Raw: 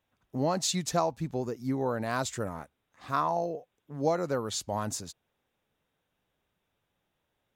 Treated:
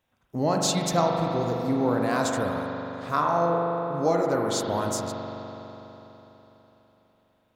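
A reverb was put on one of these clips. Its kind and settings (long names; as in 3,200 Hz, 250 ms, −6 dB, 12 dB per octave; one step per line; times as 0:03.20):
spring reverb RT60 3.8 s, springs 41 ms, chirp 65 ms, DRR 0 dB
level +3 dB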